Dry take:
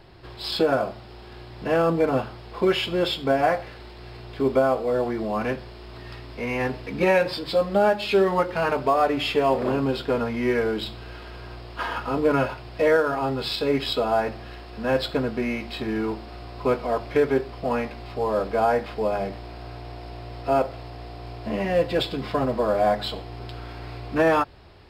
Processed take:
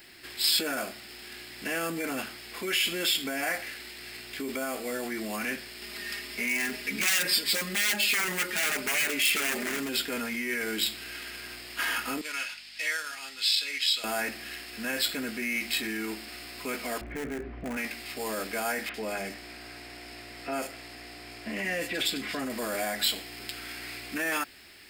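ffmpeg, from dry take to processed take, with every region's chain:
ffmpeg -i in.wav -filter_complex "[0:a]asettb=1/sr,asplit=3[link_01][link_02][link_03];[link_01]atrim=end=5.824[link_04];[link_02]atrim=start=5.82:end=9.89,asetpts=PTS-STARTPTS,afade=type=in:duration=0.004:curve=qsin,afade=type=out:start_time=4.066:duration=0.004:curve=qsin,aecho=1:1:4.9:0.68,atrim=end_sample=179487,acompressor=mode=upward:threshold=-34dB:ratio=2.5:attack=3.2:release=140:knee=2.83:detection=peak,aeval=exprs='0.112*(abs(mod(val(0)/0.112+3,4)-2)-1)':channel_layout=same[link_05];[link_03]atrim=start=9.886[link_06];[link_04][link_05]acrossfade=duration=0.004:curve1=hsin:curve2=qsin[link_07];[link_07][link_06]acrossfade=duration=0.004:curve1=qsin:curve2=hsin,asettb=1/sr,asplit=3[link_08][link_09][link_10];[link_08]atrim=end=12.214[link_11];[link_09]atrim=start=12.21:end=14.04,asetpts=PTS-STARTPTS,afade=type=in:duration=0.004:curve=qsin,afade=type=out:start_time=1.826:duration=0.004:curve=qsin,bandpass=frequency=4100:width_type=q:width=1.1,aeval=exprs='val(0)+0.00158*(sin(2*PI*50*n/s)+sin(2*PI*2*50*n/s)/2+sin(2*PI*3*50*n/s)/3+sin(2*PI*4*50*n/s)/4+sin(2*PI*5*50*n/s)/5)':channel_layout=same[link_12];[link_10]atrim=start=14.036[link_13];[link_11][link_12]acrossfade=duration=0.004:curve1=hsin:curve2=qsin[link_14];[link_14][link_13]acrossfade=duration=0.004:curve1=qsin:curve2=hsin,asettb=1/sr,asplit=3[link_15][link_16][link_17];[link_15]atrim=end=17.014[link_18];[link_16]atrim=start=17.01:end=17.77,asetpts=PTS-STARTPTS,afade=type=in:duration=0.004:curve=qsin,afade=type=out:start_time=0.756:duration=0.004:curve=qsin,lowpass=1700,aemphasis=mode=reproduction:type=riaa,aeval=exprs='clip(val(0),-1,0.126)':channel_layout=same[link_19];[link_17]atrim=start=17.766[link_20];[link_18][link_19]acrossfade=duration=0.004:curve1=hsin:curve2=qsin[link_21];[link_21][link_20]acrossfade=duration=0.004:curve1=qsin:curve2=hsin,asettb=1/sr,asplit=3[link_22][link_23][link_24];[link_22]atrim=end=18.894[link_25];[link_23]atrim=start=18.89:end=22.5,asetpts=PTS-STARTPTS,afade=type=in:duration=0.004:curve=qsin,afade=type=out:start_time=3.606:duration=0.004:curve=qsin,highshelf=frequency=9200:gain=-11,acrossover=split=3200[link_26][link_27];[link_27]adelay=50[link_28];[link_26][link_28]amix=inputs=2:normalize=0,atrim=end_sample=159201[link_29];[link_24]atrim=start=22.496[link_30];[link_25][link_29]acrossfade=duration=0.004:curve1=hsin:curve2=qsin[link_31];[link_31][link_30]acrossfade=duration=0.004:curve1=qsin:curve2=hsin,equalizer=frequency=125:width_type=o:width=1:gain=-8,equalizer=frequency=250:width_type=o:width=1:gain=6,equalizer=frequency=500:width_type=o:width=1:gain=-8,equalizer=frequency=1000:width_type=o:width=1:gain=-11,equalizer=frequency=2000:width_type=o:width=1:gain=8,equalizer=frequency=4000:width_type=o:width=1:gain=-5,equalizer=frequency=8000:width_type=o:width=1:gain=6,alimiter=limit=-23dB:level=0:latency=1:release=14,aemphasis=mode=production:type=riaa,volume=1dB" out.wav

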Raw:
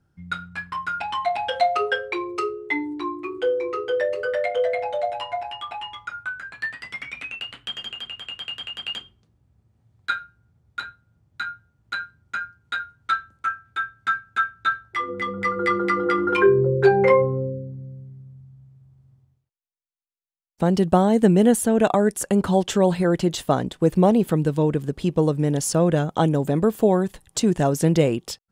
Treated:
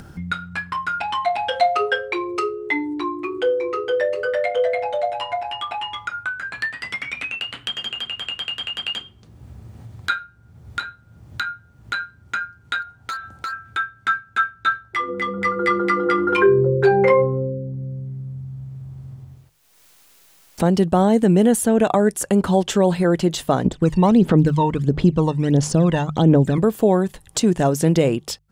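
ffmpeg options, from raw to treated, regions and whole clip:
ffmpeg -i in.wav -filter_complex "[0:a]asettb=1/sr,asplit=3[link_01][link_02][link_03];[link_01]atrim=end=12.824[link_04];[link_02]atrim=start=12.82:end=13.53,asetpts=PTS-STARTPTS,afade=type=in:duration=0.004:curve=qsin,afade=type=out:start_time=0.706:duration=0.004:curve=qsin,equalizer=frequency=770:width_type=o:width=0.44:gain=9,acompressor=threshold=-37dB:ratio=2:attack=3.2:release=140:knee=1:detection=peak,asoftclip=type=hard:threshold=-33dB[link_05];[link_03]atrim=start=13.526[link_06];[link_04][link_05]acrossfade=duration=0.004:curve1=hsin:curve2=qsin[link_07];[link_07][link_06]acrossfade=duration=0.004:curve1=qsin:curve2=hsin,asettb=1/sr,asplit=3[link_08][link_09][link_10];[link_08]atrim=end=23.654[link_11];[link_09]atrim=start=23.65:end=26.58,asetpts=PTS-STARTPTS,afade=type=in:duration=0.004:curve=qsin,afade=type=out:start_time=2.926:duration=0.004:curve=qsin,lowpass=6700,aphaser=in_gain=1:out_gain=1:delay=1.1:decay=0.73:speed=1.5:type=sinusoidal[link_12];[link_10]atrim=start=26.576[link_13];[link_11][link_12]acrossfade=duration=0.004:curve1=hsin:curve2=qsin[link_14];[link_14][link_13]acrossfade=duration=0.004:curve1=qsin:curve2=hsin,bandreject=frequency=50:width_type=h:width=6,bandreject=frequency=100:width_type=h:width=6,bandreject=frequency=150:width_type=h:width=6,acompressor=mode=upward:threshold=-24dB:ratio=2.5,alimiter=level_in=7.5dB:limit=-1dB:release=50:level=0:latency=1,volume=-5dB" out.wav

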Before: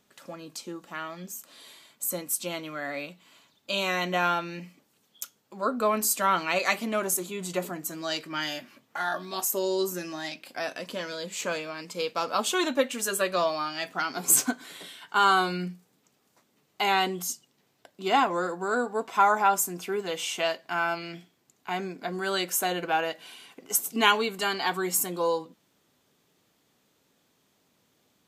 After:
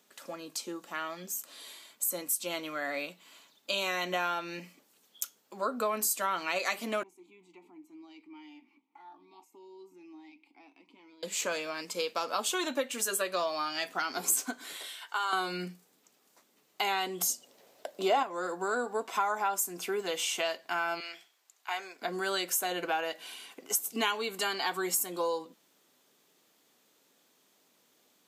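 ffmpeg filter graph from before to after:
ffmpeg -i in.wav -filter_complex "[0:a]asettb=1/sr,asplit=3[link_01][link_02][link_03];[link_01]atrim=end=7.034[link_04];[link_02]atrim=start=7.03:end=11.23,asetpts=PTS-STARTPTS,afade=type=in:duration=0.004:curve=qsin,afade=type=out:start_time=4.196:duration=0.004:curve=qsin,acompressor=threshold=-49dB:ratio=1.5:attack=3.2:release=140:knee=1:detection=peak,asplit=3[link_05][link_06][link_07];[link_05]bandpass=frequency=300:width_type=q:width=8,volume=0dB[link_08];[link_06]bandpass=frequency=870:width_type=q:width=8,volume=-6dB[link_09];[link_07]bandpass=frequency=2240:width_type=q:width=8,volume=-9dB[link_10];[link_08][link_09][link_10]amix=inputs=3:normalize=0[link_11];[link_03]atrim=start=11.226[link_12];[link_04][link_11]acrossfade=duration=0.004:curve1=hsin:curve2=qsin[link_13];[link_13][link_12]acrossfade=duration=0.004:curve1=qsin:curve2=hsin,asettb=1/sr,asplit=3[link_14][link_15][link_16];[link_14]atrim=end=14.764[link_17];[link_15]atrim=start=14.76:end=15.33,asetpts=PTS-STARTPTS,afade=type=in:duration=0.004:curve=qsin,afade=type=out:start_time=0.566:duration=0.004:curve=qsin,acompressor=threshold=-28dB:ratio=2:attack=3.2:release=140:knee=1:detection=peak,highpass=530[link_18];[link_16]atrim=start=15.326[link_19];[link_17][link_18]acrossfade=duration=0.004:curve1=hsin:curve2=qsin[link_20];[link_20][link_19]acrossfade=duration=0.004:curve1=qsin:curve2=hsin,asettb=1/sr,asplit=3[link_21][link_22][link_23];[link_21]atrim=end=17.214[link_24];[link_22]atrim=start=17.21:end=18.23,asetpts=PTS-STARTPTS,afade=type=in:duration=0.004:curve=qsin,afade=type=out:start_time=1.016:duration=0.004:curve=qsin,acontrast=33,equalizer=frequency=580:width=1.9:gain=12.5,bandreject=frequency=50:width_type=h:width=6,bandreject=frequency=100:width_type=h:width=6,bandreject=frequency=150:width_type=h:width=6,bandreject=frequency=200:width_type=h:width=6,bandreject=frequency=250:width_type=h:width=6,bandreject=frequency=300:width_type=h:width=6,bandreject=frequency=350:width_type=h:width=6[link_25];[link_23]atrim=start=18.226[link_26];[link_24][link_25]acrossfade=duration=0.004:curve1=hsin:curve2=qsin[link_27];[link_27][link_26]acrossfade=duration=0.004:curve1=qsin:curve2=hsin,asettb=1/sr,asplit=3[link_28][link_29][link_30];[link_28]atrim=end=21.004[link_31];[link_29]atrim=start=21:end=22.02,asetpts=PTS-STARTPTS,afade=type=in:duration=0.004:curve=qsin,afade=type=out:start_time=1.016:duration=0.004:curve=qsin,highpass=790,highshelf=frequency=11000:gain=-4[link_32];[link_30]atrim=start=22.016[link_33];[link_31][link_32]acrossfade=duration=0.004:curve1=hsin:curve2=qsin[link_34];[link_34][link_33]acrossfade=duration=0.004:curve1=qsin:curve2=hsin,highpass=260,highshelf=frequency=4900:gain=4.5,acompressor=threshold=-29dB:ratio=3" out.wav

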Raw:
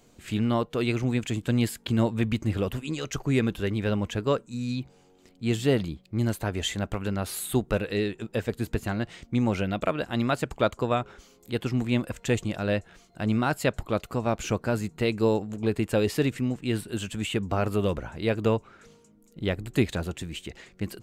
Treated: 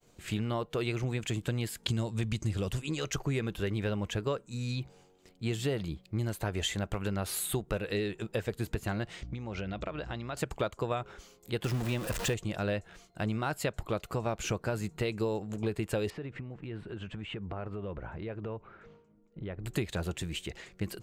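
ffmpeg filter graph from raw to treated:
ffmpeg -i in.wav -filter_complex "[0:a]asettb=1/sr,asplit=3[link_01][link_02][link_03];[link_01]atrim=end=1.834[link_04];[link_02]atrim=start=1.83:end=2.82,asetpts=PTS-STARTPTS,afade=type=in:duration=0.004:curve=qsin,afade=type=out:start_time=0.986:duration=0.004:curve=qsin,lowpass=8200,bass=frequency=250:gain=5,treble=frequency=4000:gain=14[link_05];[link_03]atrim=start=2.816[link_06];[link_04][link_05]acrossfade=duration=0.004:curve1=hsin:curve2=qsin[link_07];[link_07][link_06]acrossfade=duration=0.004:curve1=qsin:curve2=hsin,asettb=1/sr,asplit=3[link_08][link_09][link_10];[link_08]atrim=end=9.224[link_11];[link_09]atrim=start=9.22:end=10.37,asetpts=PTS-STARTPTS,afade=type=in:duration=0.004:curve=qsin,afade=type=out:start_time=1.146:duration=0.004:curve=qsin,lowpass=frequency=6200:width=0.5412,lowpass=frequency=6200:width=1.3066,aeval=exprs='val(0)+0.00891*(sin(2*PI*60*n/s)+sin(2*PI*2*60*n/s)/2+sin(2*PI*3*60*n/s)/3+sin(2*PI*4*60*n/s)/4+sin(2*PI*5*60*n/s)/5)':channel_layout=same,acompressor=threshold=-31dB:ratio=12:attack=3.2:release=140:knee=1:detection=peak[link_12];[link_10]atrim=start=10.366[link_13];[link_11][link_12]acrossfade=duration=0.004:curve1=hsin:curve2=qsin[link_14];[link_14][link_13]acrossfade=duration=0.004:curve1=qsin:curve2=hsin,asettb=1/sr,asplit=3[link_15][link_16][link_17];[link_15]atrim=end=11.644[link_18];[link_16]atrim=start=11.64:end=12.34,asetpts=PTS-STARTPTS,afade=type=in:duration=0.004:curve=qsin,afade=type=out:start_time=0.696:duration=0.004:curve=qsin,aeval=exprs='val(0)+0.5*0.0335*sgn(val(0))':channel_layout=same,bandreject=frequency=2200:width=17[link_19];[link_17]atrim=start=12.336[link_20];[link_18][link_19]acrossfade=duration=0.004:curve1=hsin:curve2=qsin[link_21];[link_21][link_20]acrossfade=duration=0.004:curve1=qsin:curve2=hsin,asettb=1/sr,asplit=3[link_22][link_23][link_24];[link_22]atrim=end=16.104[link_25];[link_23]atrim=start=16.1:end=19.64,asetpts=PTS-STARTPTS,afade=type=in:duration=0.004:curve=qsin,afade=type=out:start_time=3.536:duration=0.004:curve=qsin,lowpass=2000,acompressor=threshold=-35dB:ratio=5:attack=3.2:release=140:knee=1:detection=peak[link_26];[link_24]atrim=start=19.636[link_27];[link_25][link_26]acrossfade=duration=0.004:curve1=hsin:curve2=qsin[link_28];[link_28][link_27]acrossfade=duration=0.004:curve1=qsin:curve2=hsin,agate=range=-33dB:threshold=-54dB:ratio=3:detection=peak,equalizer=frequency=250:width=5.3:gain=-9.5,acompressor=threshold=-28dB:ratio=6" out.wav

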